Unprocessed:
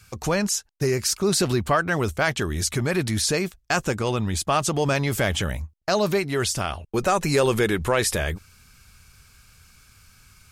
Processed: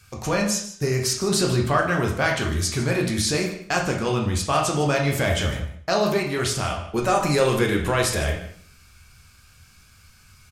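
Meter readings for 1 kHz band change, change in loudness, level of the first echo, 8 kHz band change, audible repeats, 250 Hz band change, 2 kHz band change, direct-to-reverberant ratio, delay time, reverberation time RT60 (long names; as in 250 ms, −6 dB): +1.5 dB, +0.5 dB, −15.5 dB, −0.5 dB, 1, +1.0 dB, +0.5 dB, 0.0 dB, 153 ms, 0.60 s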